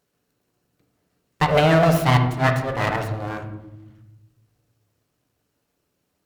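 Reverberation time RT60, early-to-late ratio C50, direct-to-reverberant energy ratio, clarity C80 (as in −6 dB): 0.95 s, 8.0 dB, 4.0 dB, 10.5 dB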